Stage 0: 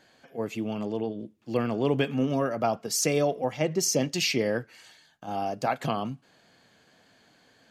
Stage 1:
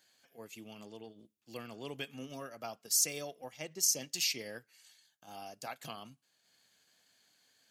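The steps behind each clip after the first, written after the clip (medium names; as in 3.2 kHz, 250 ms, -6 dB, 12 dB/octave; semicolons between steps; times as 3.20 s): transient shaper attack 0 dB, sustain -5 dB; pre-emphasis filter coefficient 0.9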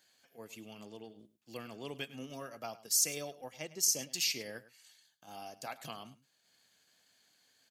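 delay 104 ms -17 dB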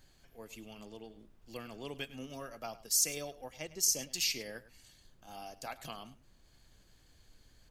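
added noise brown -62 dBFS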